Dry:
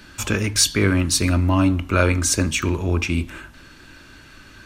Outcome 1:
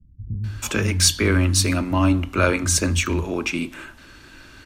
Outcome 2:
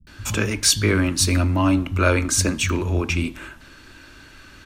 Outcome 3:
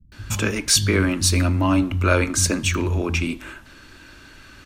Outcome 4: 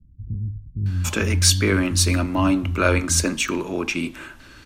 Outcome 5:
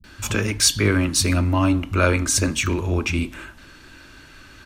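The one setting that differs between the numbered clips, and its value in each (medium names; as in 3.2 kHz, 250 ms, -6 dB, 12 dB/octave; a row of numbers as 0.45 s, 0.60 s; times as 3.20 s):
bands offset in time, time: 440 ms, 70 ms, 120 ms, 860 ms, 40 ms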